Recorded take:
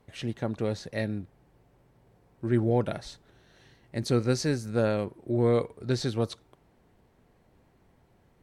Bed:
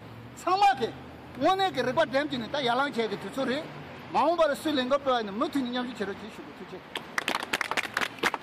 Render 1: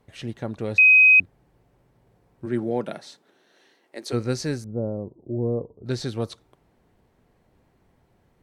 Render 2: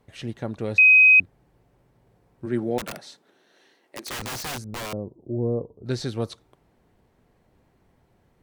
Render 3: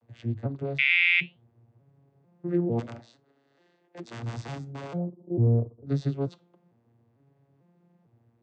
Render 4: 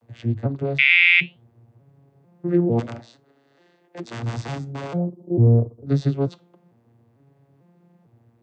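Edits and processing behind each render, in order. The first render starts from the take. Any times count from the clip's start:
0.78–1.20 s: bleep 2.52 kHz -10 dBFS; 2.45–4.12 s: high-pass 130 Hz -> 350 Hz 24 dB/octave; 4.64–5.86 s: Gaussian low-pass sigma 12 samples
2.78–4.93 s: integer overflow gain 27 dB
vocoder on a broken chord minor triad, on A#2, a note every 447 ms; flange 0.54 Hz, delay 1.2 ms, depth 8.4 ms, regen -83%
trim +7 dB

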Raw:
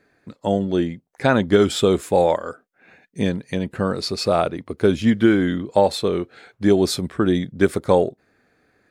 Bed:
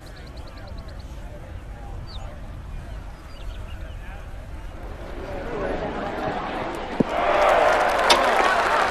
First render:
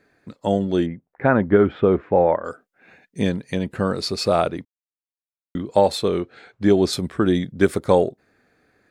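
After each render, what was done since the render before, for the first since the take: 0.86–2.45 s: low-pass 2 kHz 24 dB/octave; 4.65–5.55 s: mute; 6.20–6.93 s: distance through air 50 m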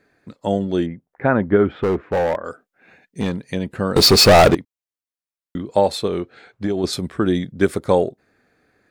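1.76–3.40 s: hard clipper -15 dBFS; 3.96–4.55 s: waveshaping leveller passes 5; 6.06–6.84 s: compression, threshold -17 dBFS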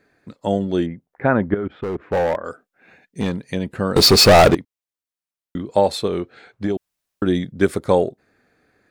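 1.54–2.02 s: level held to a coarse grid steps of 24 dB; 6.77–7.22 s: room tone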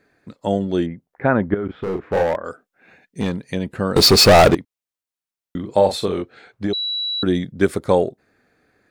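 1.65–2.23 s: doubling 36 ms -5 dB; 5.59–6.22 s: doubling 42 ms -7.5 dB; 6.73–7.23 s: bleep 3.92 kHz -21 dBFS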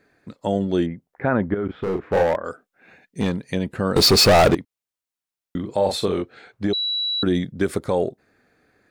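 peak limiter -10 dBFS, peak gain reduction 7.5 dB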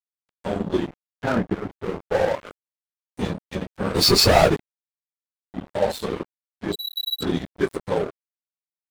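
phase randomisation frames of 50 ms; crossover distortion -27.5 dBFS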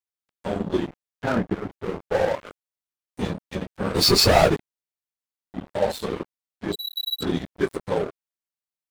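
trim -1 dB

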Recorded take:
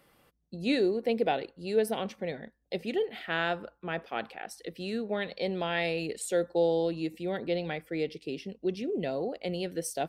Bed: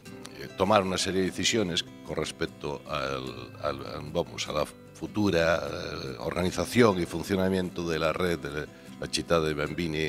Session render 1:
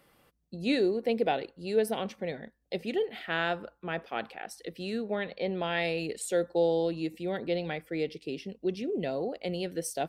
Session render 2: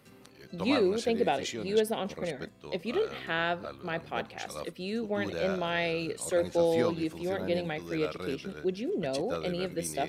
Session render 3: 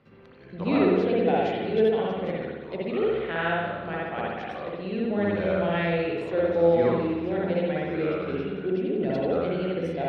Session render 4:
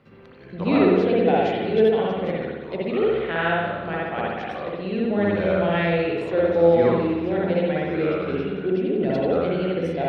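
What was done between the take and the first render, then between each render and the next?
5.15–5.64 s: low-pass 3.2 kHz
add bed -11.5 dB
distance through air 320 m; spring tank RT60 1.2 s, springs 59 ms, chirp 35 ms, DRR -5 dB
trim +4 dB

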